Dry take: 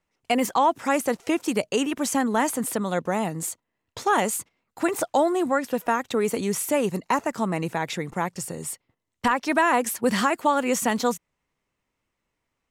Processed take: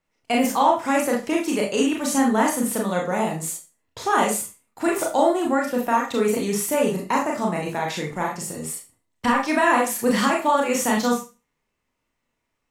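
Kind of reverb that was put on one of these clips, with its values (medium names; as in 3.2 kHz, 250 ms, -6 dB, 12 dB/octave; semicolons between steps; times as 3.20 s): Schroeder reverb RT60 0.3 s, combs from 26 ms, DRR -1.5 dB; trim -1.5 dB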